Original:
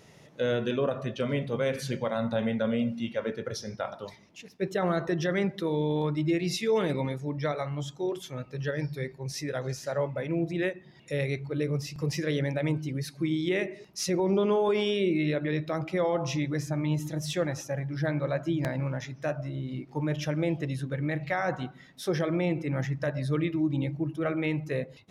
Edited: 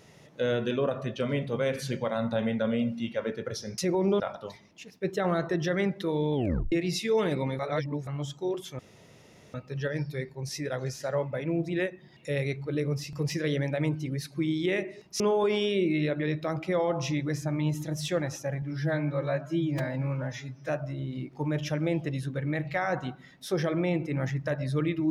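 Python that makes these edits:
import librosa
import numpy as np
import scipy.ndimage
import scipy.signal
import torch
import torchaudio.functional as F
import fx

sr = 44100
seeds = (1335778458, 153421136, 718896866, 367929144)

y = fx.edit(x, sr, fx.tape_stop(start_s=5.92, length_s=0.38),
    fx.reverse_span(start_s=7.17, length_s=0.48),
    fx.insert_room_tone(at_s=8.37, length_s=0.75),
    fx.move(start_s=14.03, length_s=0.42, to_s=3.78),
    fx.stretch_span(start_s=17.87, length_s=1.38, factor=1.5), tone=tone)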